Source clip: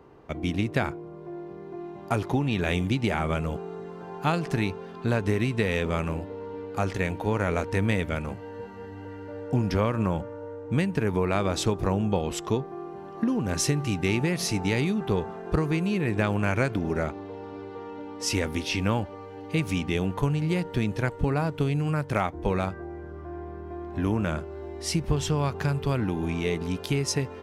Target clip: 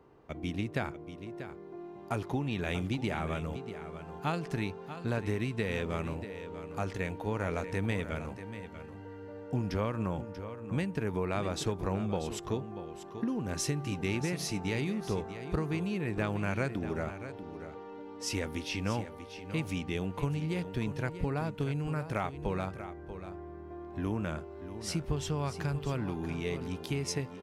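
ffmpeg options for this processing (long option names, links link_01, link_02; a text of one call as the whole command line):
ffmpeg -i in.wav -af "aecho=1:1:638:0.266,volume=-7.5dB" out.wav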